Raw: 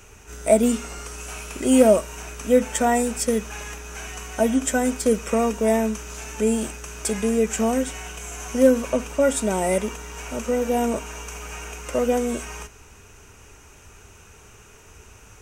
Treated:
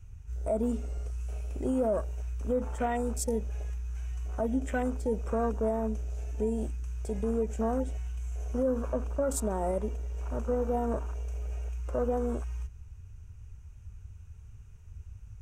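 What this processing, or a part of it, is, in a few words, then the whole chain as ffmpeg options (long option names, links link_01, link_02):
car stereo with a boomy subwoofer: -af "lowshelf=frequency=130:width_type=q:width=1.5:gain=9,alimiter=limit=-14.5dB:level=0:latency=1:release=74,afwtdn=0.0251,volume=-5.5dB"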